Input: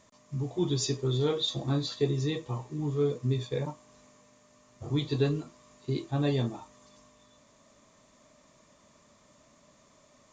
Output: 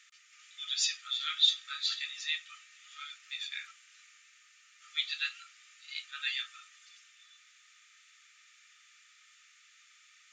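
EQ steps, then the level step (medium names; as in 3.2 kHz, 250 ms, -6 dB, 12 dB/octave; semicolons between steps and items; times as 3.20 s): brick-wall FIR high-pass 1.2 kHz; peaking EQ 2.6 kHz +11 dB 1.2 oct; 0.0 dB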